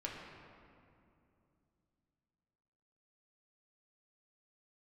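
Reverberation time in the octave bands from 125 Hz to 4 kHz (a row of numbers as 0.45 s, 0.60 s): 3.8 s, 3.5 s, 2.8 s, 2.5 s, 2.0 s, 1.5 s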